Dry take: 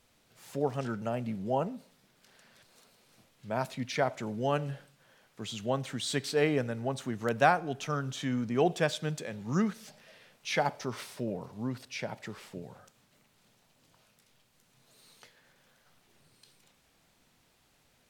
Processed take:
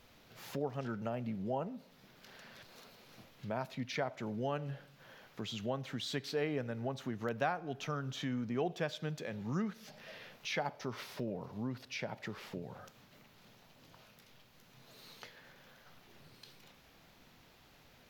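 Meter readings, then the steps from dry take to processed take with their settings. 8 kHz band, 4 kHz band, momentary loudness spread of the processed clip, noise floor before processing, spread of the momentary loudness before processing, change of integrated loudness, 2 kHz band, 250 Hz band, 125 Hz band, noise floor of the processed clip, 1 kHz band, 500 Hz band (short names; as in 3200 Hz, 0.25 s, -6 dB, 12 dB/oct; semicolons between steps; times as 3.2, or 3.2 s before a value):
-9.5 dB, -5.0 dB, 21 LU, -68 dBFS, 15 LU, -7.0 dB, -7.0 dB, -5.5 dB, -5.5 dB, -63 dBFS, -8.5 dB, -7.0 dB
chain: compressor 2:1, threshold -51 dBFS, peak gain reduction 18 dB; bell 8700 Hz -14.5 dB 0.63 oct; gain +6.5 dB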